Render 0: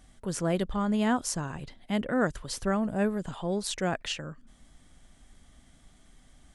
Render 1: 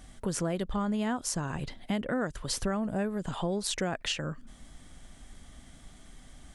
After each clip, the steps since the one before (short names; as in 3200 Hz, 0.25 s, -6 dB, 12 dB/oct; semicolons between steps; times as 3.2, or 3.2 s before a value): compressor 6:1, threshold -34 dBFS, peak gain reduction 12.5 dB; gain +6 dB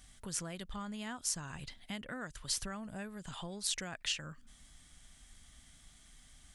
passive tone stack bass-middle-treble 5-5-5; gain +4.5 dB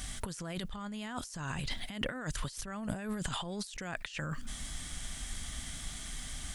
negative-ratio compressor -50 dBFS, ratio -1; gain +11 dB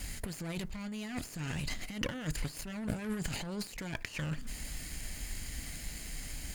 minimum comb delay 0.44 ms; reverb RT60 0.35 s, pre-delay 3 ms, DRR 15.5 dB; gain +1 dB